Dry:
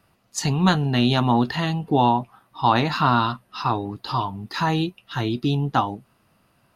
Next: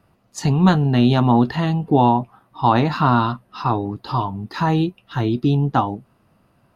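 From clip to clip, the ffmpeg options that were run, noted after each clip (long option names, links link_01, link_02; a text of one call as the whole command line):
ffmpeg -i in.wav -af "tiltshelf=frequency=1400:gain=5" out.wav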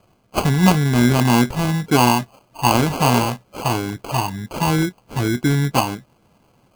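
ffmpeg -i in.wav -af "aexciter=amount=5.6:drive=5.4:freq=4800,acrusher=samples=24:mix=1:aa=0.000001" out.wav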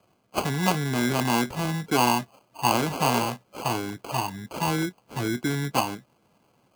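ffmpeg -i in.wav -filter_complex "[0:a]highpass=frequency=160:poles=1,acrossover=split=290[link_01][link_02];[link_01]alimiter=limit=-19dB:level=0:latency=1[link_03];[link_03][link_02]amix=inputs=2:normalize=0,volume=-5.5dB" out.wav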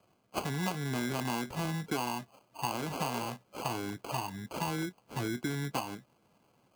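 ffmpeg -i in.wav -af "acompressor=threshold=-26dB:ratio=6,volume=-4dB" out.wav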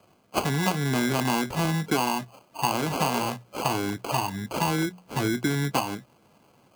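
ffmpeg -i in.wav -af "bandreject=frequency=60:width_type=h:width=6,bandreject=frequency=120:width_type=h:width=6,bandreject=frequency=180:width_type=h:width=6,volume=9dB" out.wav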